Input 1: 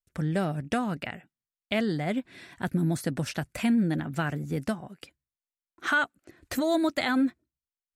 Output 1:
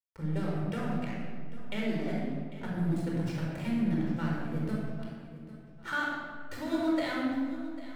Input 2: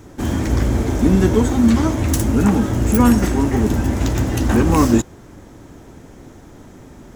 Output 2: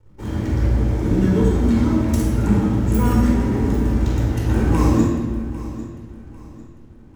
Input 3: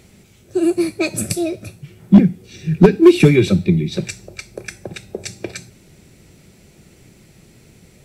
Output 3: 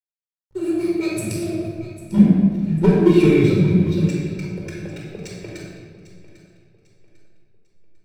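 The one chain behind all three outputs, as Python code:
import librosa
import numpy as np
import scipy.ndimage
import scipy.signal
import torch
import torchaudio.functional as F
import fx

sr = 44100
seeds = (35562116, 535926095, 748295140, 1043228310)

p1 = fx.backlash(x, sr, play_db=-31.0)
p2 = p1 + fx.echo_feedback(p1, sr, ms=798, feedback_pct=34, wet_db=-16, dry=0)
p3 = fx.room_shoebox(p2, sr, seeds[0], volume_m3=1900.0, walls='mixed', distance_m=4.5)
y = F.gain(torch.from_numpy(p3), -12.5).numpy()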